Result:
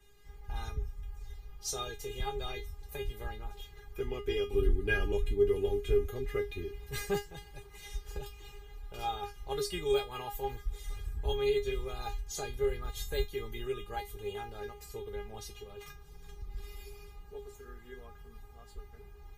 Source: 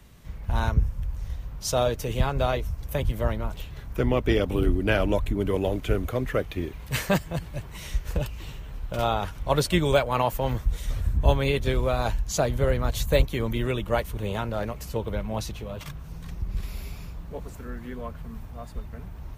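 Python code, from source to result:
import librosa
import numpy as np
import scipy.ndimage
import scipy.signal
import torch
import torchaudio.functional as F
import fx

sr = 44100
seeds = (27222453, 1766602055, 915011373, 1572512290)

y = fx.low_shelf(x, sr, hz=360.0, db=7.5, at=(4.53, 7.2))
y = fx.comb_fb(y, sr, f0_hz=410.0, decay_s=0.2, harmonics='all', damping=0.0, mix_pct=100)
y = fx.dynamic_eq(y, sr, hz=860.0, q=0.74, threshold_db=-52.0, ratio=4.0, max_db=-4)
y = F.gain(torch.from_numpy(y), 6.0).numpy()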